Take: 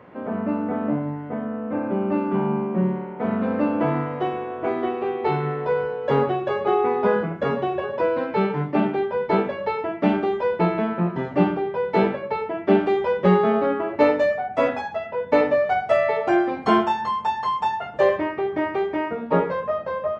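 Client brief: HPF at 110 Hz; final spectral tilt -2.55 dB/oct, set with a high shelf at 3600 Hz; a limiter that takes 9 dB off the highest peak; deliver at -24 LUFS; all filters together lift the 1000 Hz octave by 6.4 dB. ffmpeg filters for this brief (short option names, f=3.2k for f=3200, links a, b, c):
-af "highpass=110,equalizer=f=1k:t=o:g=8.5,highshelf=f=3.6k:g=-8,volume=-2.5dB,alimiter=limit=-12.5dB:level=0:latency=1"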